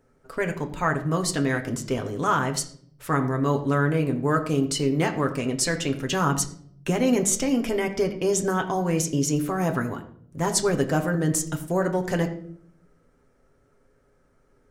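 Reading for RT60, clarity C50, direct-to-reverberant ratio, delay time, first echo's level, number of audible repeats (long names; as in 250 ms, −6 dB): 0.60 s, 12.0 dB, 3.0 dB, no echo audible, no echo audible, no echo audible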